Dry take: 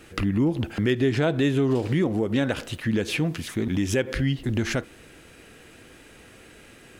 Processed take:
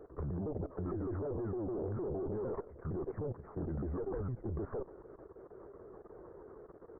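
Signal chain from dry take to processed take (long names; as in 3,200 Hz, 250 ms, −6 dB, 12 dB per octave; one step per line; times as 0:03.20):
pitch shifter swept by a sawtooth −7.5 semitones, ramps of 153 ms
low shelf with overshoot 320 Hz −8.5 dB, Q 3
tube saturation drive 32 dB, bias 0.55
Gaussian smoothing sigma 9.6 samples
output level in coarse steps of 15 dB
level +8 dB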